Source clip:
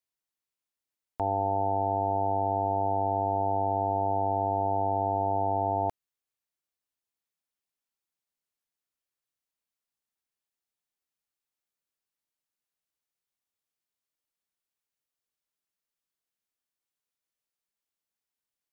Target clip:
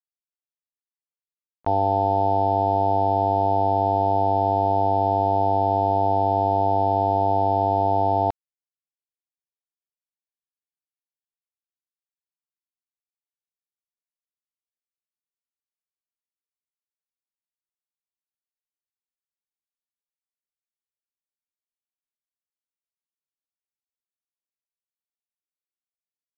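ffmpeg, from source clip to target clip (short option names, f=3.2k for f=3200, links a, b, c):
-af "aeval=exprs='val(0)*gte(abs(val(0)),0.00708)':c=same,aresample=11025,aresample=44100,atempo=0.71,volume=7dB"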